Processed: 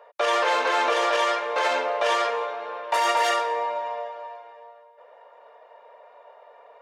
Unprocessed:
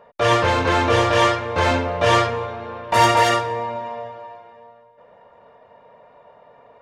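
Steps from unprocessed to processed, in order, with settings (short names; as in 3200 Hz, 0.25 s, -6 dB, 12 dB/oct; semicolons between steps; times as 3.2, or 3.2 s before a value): HPF 460 Hz 24 dB/oct; limiter -13.5 dBFS, peak gain reduction 10 dB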